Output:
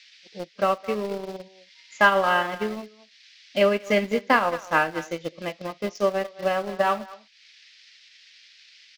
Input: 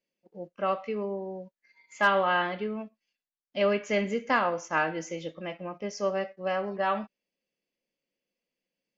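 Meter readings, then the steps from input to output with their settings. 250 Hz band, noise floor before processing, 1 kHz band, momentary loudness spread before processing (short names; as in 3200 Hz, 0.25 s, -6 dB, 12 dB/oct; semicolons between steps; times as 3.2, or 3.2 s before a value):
+4.0 dB, under -85 dBFS, +5.0 dB, 14 LU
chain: band noise 1800–5300 Hz -54 dBFS; speakerphone echo 0.21 s, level -11 dB; in parallel at -8 dB: sample gate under -31 dBFS; on the sum: transient shaper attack +4 dB, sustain -7 dB; gain +1 dB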